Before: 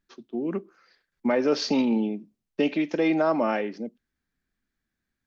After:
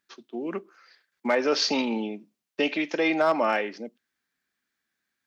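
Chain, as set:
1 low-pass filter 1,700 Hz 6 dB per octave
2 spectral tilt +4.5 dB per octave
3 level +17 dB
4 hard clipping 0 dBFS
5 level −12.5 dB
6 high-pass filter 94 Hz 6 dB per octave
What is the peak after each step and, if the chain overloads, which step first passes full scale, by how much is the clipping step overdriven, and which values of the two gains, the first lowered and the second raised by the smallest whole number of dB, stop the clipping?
−13.0, −14.0, +3.0, 0.0, −12.5, −12.0 dBFS
step 3, 3.0 dB
step 3 +14 dB, step 5 −9.5 dB

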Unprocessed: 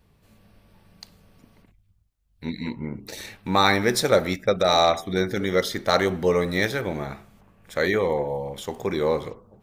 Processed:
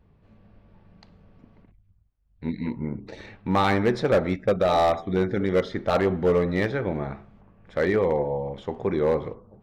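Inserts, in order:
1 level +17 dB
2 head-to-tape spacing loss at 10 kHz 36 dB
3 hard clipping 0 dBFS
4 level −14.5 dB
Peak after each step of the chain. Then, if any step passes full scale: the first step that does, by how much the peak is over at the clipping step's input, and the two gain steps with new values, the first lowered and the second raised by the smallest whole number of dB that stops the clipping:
+13.5, +9.0, 0.0, −14.5 dBFS
step 1, 9.0 dB
step 1 +8 dB, step 4 −5.5 dB

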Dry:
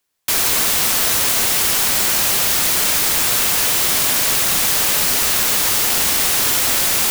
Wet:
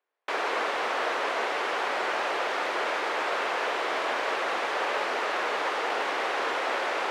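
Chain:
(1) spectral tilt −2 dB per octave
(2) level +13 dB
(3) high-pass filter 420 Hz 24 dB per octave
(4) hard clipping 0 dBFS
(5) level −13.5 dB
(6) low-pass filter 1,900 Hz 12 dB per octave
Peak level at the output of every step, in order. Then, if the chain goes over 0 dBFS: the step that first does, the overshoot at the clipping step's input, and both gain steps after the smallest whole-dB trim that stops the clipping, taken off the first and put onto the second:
−7.5, +5.5, +4.5, 0.0, −13.5, −16.5 dBFS
step 2, 4.5 dB
step 2 +8 dB, step 5 −8.5 dB

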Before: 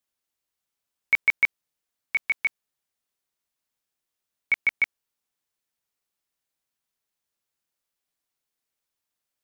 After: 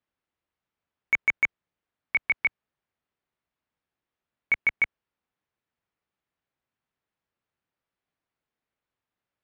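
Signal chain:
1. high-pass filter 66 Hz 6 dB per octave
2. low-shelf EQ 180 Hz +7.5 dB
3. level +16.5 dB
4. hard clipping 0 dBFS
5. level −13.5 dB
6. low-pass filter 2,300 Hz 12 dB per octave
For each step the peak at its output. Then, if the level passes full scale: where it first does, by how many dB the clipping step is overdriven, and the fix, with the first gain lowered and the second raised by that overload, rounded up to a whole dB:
−12.0, −12.0, +4.5, 0.0, −13.5, −14.5 dBFS
step 3, 4.5 dB
step 3 +11.5 dB, step 5 −8.5 dB

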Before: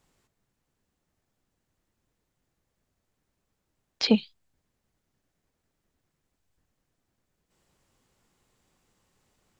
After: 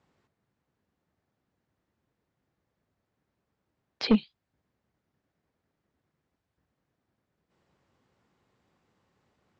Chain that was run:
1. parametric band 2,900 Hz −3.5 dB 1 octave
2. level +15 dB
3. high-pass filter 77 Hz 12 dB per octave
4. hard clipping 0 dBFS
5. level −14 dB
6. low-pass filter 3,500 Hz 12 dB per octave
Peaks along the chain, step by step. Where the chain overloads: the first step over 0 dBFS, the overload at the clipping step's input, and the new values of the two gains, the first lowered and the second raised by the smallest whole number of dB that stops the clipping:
−7.5, +7.5, +7.5, 0.0, −14.0, −14.0 dBFS
step 2, 7.5 dB
step 2 +7 dB, step 5 −6 dB

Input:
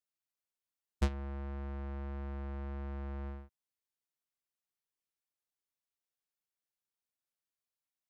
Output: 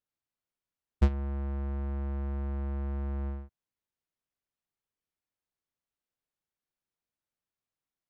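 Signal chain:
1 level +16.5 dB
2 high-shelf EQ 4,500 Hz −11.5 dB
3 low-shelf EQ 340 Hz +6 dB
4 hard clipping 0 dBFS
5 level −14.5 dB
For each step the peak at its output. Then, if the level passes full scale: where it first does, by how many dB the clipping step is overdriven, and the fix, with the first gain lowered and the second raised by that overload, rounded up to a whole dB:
−6.0, −7.5, −1.5, −1.5, −16.0 dBFS
no step passes full scale

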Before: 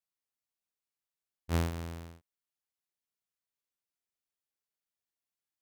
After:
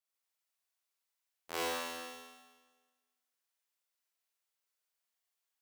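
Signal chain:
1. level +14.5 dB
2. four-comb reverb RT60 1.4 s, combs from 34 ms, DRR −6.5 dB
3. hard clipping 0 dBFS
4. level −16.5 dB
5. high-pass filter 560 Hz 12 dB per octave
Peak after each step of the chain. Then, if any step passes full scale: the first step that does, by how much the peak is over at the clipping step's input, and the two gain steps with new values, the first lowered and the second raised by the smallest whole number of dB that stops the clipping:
−7.0, −2.5, −2.5, −19.0, −18.5 dBFS
no step passes full scale

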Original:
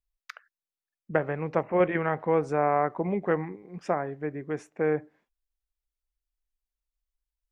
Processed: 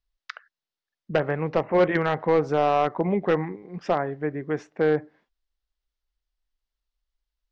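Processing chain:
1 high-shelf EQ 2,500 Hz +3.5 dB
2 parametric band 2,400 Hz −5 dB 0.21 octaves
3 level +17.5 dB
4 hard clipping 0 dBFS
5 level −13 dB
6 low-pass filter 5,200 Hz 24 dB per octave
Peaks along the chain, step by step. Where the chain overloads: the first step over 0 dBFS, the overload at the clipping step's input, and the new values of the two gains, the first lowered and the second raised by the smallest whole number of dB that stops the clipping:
−7.5, −7.5, +10.0, 0.0, −13.0, −12.5 dBFS
step 3, 10.0 dB
step 3 +7.5 dB, step 5 −3 dB

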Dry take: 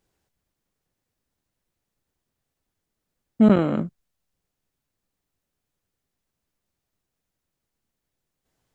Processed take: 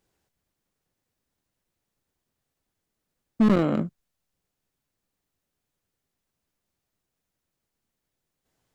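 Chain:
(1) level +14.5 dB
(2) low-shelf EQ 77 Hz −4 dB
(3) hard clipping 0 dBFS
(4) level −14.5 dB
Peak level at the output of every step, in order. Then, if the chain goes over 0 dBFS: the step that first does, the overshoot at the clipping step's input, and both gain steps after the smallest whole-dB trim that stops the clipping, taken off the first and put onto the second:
+8.5, +8.5, 0.0, −14.5 dBFS
step 1, 8.5 dB
step 1 +5.5 dB, step 4 −5.5 dB

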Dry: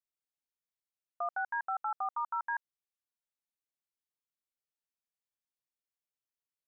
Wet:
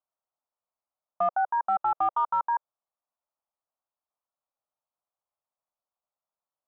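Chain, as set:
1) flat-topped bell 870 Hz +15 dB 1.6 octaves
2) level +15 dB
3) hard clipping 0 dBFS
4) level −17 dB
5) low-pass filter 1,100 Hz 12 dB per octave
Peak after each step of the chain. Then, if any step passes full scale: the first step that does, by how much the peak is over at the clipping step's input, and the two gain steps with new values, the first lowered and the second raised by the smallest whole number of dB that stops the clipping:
−12.0, +3.0, 0.0, −17.0, −18.0 dBFS
step 2, 3.0 dB
step 2 +12 dB, step 4 −14 dB

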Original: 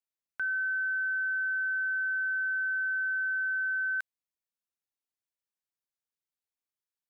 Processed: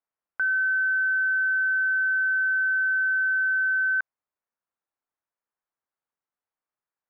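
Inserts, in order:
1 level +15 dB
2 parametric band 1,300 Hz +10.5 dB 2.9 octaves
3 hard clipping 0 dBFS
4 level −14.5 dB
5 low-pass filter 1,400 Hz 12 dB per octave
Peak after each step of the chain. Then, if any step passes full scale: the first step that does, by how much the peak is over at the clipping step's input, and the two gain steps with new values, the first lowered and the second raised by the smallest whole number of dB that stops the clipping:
−12.5, −2.0, −2.0, −16.5, −20.0 dBFS
no step passes full scale

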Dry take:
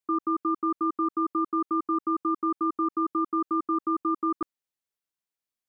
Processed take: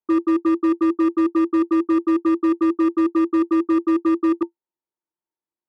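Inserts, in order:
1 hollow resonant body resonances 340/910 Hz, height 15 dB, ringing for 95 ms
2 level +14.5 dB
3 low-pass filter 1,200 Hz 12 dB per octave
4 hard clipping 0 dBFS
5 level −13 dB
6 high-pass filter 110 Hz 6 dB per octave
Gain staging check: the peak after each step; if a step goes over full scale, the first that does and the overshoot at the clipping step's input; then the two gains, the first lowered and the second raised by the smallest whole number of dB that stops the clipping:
−11.0, +3.5, +3.0, 0.0, −13.0, −11.5 dBFS
step 2, 3.0 dB
step 2 +11.5 dB, step 5 −10 dB

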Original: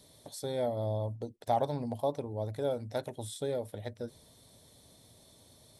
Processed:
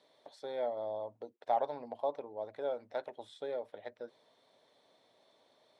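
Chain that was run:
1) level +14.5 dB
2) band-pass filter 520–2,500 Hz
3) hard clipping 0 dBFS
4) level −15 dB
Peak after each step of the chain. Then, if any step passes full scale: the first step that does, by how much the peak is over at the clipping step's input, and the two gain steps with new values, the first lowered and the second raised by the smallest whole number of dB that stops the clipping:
−3.0, −4.0, −4.0, −19.0 dBFS
no step passes full scale

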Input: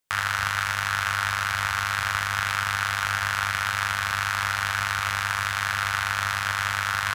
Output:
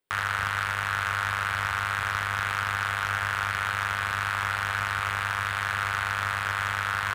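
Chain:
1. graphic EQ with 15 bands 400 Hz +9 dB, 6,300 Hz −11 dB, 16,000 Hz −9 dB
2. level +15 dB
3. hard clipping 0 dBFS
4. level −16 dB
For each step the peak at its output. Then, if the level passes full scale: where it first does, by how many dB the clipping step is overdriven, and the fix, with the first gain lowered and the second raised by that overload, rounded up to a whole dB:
−8.0, +7.0, 0.0, −16.0 dBFS
step 2, 7.0 dB
step 2 +8 dB, step 4 −9 dB

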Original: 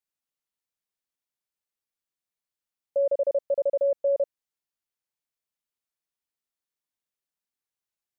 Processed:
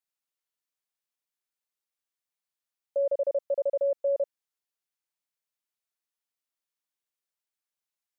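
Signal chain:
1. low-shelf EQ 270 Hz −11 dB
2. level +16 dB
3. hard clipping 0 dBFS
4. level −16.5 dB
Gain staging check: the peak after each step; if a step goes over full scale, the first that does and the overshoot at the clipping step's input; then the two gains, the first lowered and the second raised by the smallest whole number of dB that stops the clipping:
−21.0, −5.0, −5.0, −21.5 dBFS
no step passes full scale

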